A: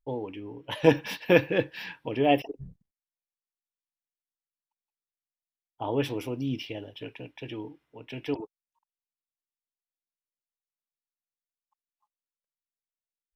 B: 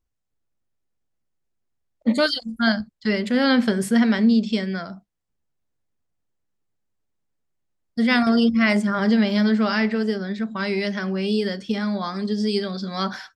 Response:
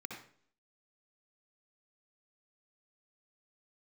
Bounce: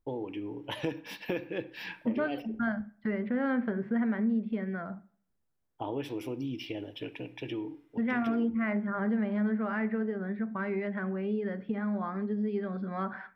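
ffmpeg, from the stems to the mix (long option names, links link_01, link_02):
-filter_complex "[0:a]equalizer=frequency=330:width_type=o:width=0.31:gain=5.5,acompressor=threshold=-34dB:ratio=4,volume=-0.5dB,asplit=2[link_01][link_02];[link_02]volume=-11dB[link_03];[1:a]lowpass=frequency=1900:width=0.5412,lowpass=frequency=1900:width=1.3066,acompressor=threshold=-34dB:ratio=2,volume=-2dB,asplit=3[link_04][link_05][link_06];[link_05]volume=-14.5dB[link_07];[link_06]apad=whole_len=588779[link_08];[link_01][link_08]sidechaincompress=threshold=-39dB:ratio=8:attack=16:release=105[link_09];[2:a]atrim=start_sample=2205[link_10];[link_03][link_07]amix=inputs=2:normalize=0[link_11];[link_11][link_10]afir=irnorm=-1:irlink=0[link_12];[link_09][link_04][link_12]amix=inputs=3:normalize=0"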